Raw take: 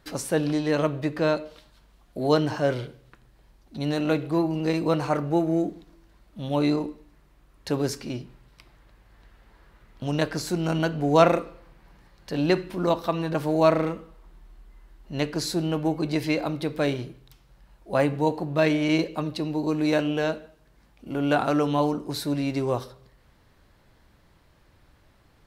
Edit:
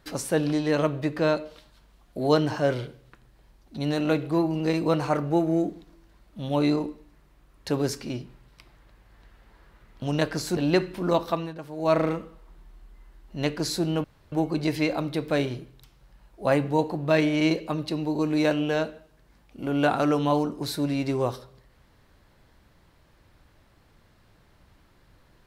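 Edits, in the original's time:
10.57–12.33 cut
13.07–13.76 dip -12.5 dB, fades 0.24 s
15.8 insert room tone 0.28 s

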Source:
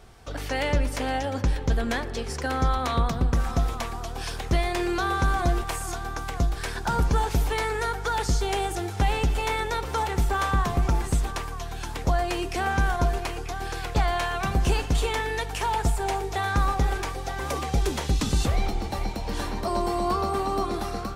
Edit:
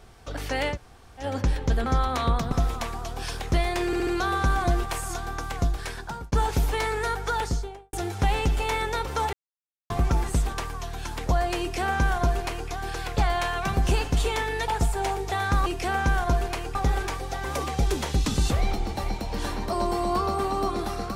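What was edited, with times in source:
0.73–1.22 room tone, crossfade 0.10 s
1.86–2.56 cut
3.22–3.51 cut
4.85 stutter 0.07 s, 4 plays
6.27–7.1 fade out equal-power
8.09–8.71 studio fade out
10.11–10.68 mute
12.38–13.47 copy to 16.7
15.46–15.72 cut

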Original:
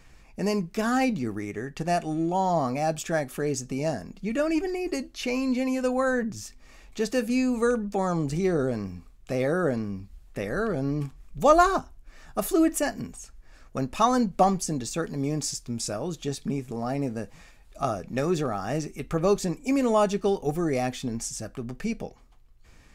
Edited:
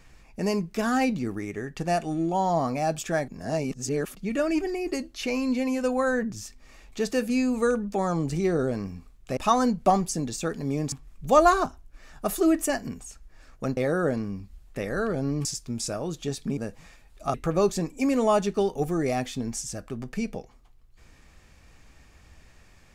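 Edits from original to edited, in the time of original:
3.28–4.15 reverse
9.37–11.05 swap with 13.9–15.45
16.57–17.12 cut
17.89–19.01 cut

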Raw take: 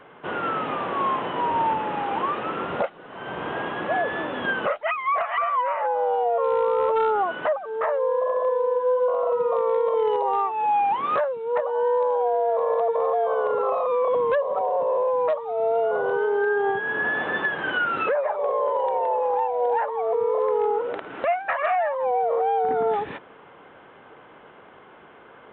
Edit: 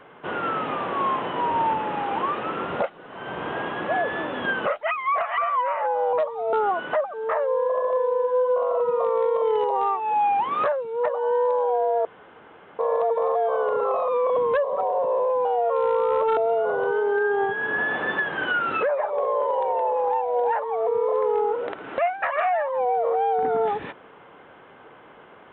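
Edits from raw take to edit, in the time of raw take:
6.13–7.05 swap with 15.23–15.63
12.57 insert room tone 0.74 s

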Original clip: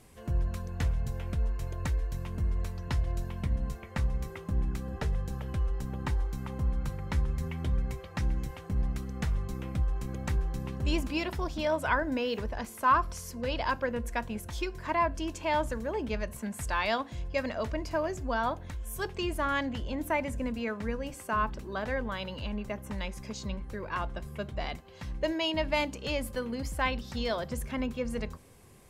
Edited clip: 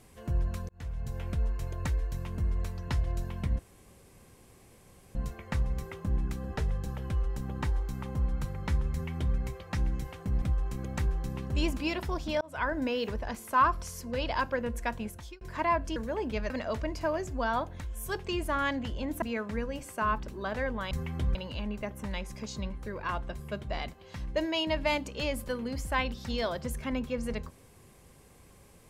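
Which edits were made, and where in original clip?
0.69–1.22 fade in
3.59 insert room tone 1.56 s
7.36–7.8 copy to 22.22
8.86–9.72 cut
11.71–12.06 fade in
14.32–14.71 fade out
15.26–15.73 cut
16.27–17.4 cut
20.12–20.53 cut

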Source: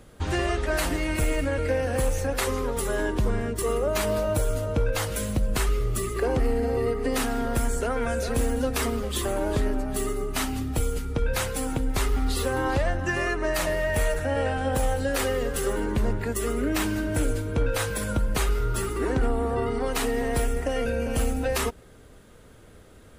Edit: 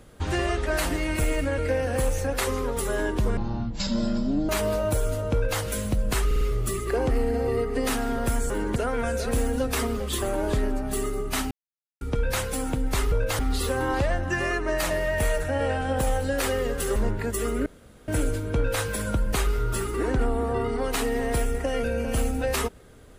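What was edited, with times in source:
3.37–3.93 speed 50%
4.78–5.05 copy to 12.15
5.7 stutter 0.05 s, 4 plays
10.54–11.04 mute
15.72–15.98 move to 7.79
16.68–17.1 room tone

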